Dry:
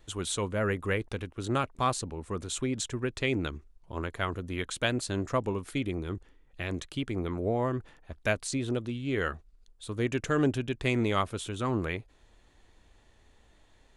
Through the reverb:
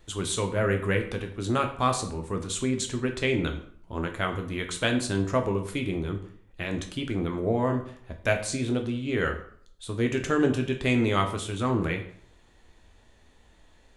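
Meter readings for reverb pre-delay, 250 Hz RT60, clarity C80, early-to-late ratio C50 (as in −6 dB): 8 ms, 0.60 s, 13.0 dB, 10.0 dB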